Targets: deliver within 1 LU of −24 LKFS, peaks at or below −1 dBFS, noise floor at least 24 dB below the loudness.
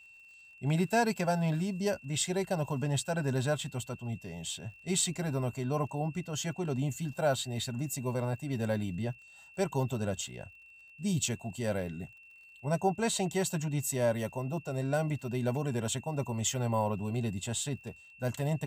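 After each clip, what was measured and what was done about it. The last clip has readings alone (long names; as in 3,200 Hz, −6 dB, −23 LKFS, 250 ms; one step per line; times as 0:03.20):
crackle rate 47 per second; interfering tone 2,700 Hz; level of the tone −53 dBFS; integrated loudness −33.0 LKFS; sample peak −16.0 dBFS; target loudness −24.0 LKFS
→ click removal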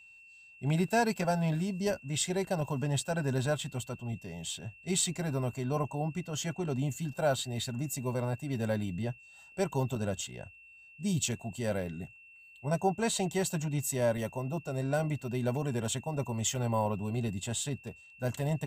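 crackle rate 0.16 per second; interfering tone 2,700 Hz; level of the tone −53 dBFS
→ notch filter 2,700 Hz, Q 30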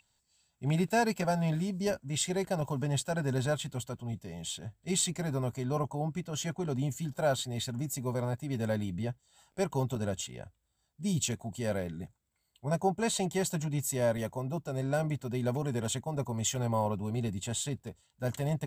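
interfering tone none found; integrated loudness −33.0 LKFS; sample peak −16.0 dBFS; target loudness −24.0 LKFS
→ level +9 dB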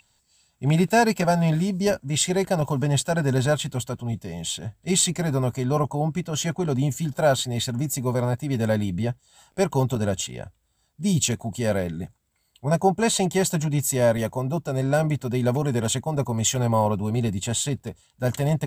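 integrated loudness −24.0 LKFS; sample peak −7.0 dBFS; background noise floor −68 dBFS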